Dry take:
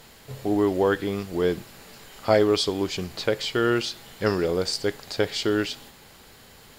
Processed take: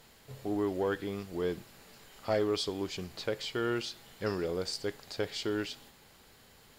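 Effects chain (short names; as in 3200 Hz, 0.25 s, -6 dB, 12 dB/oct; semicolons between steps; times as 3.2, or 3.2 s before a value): soft clip -10 dBFS, distortion -22 dB; gain -9 dB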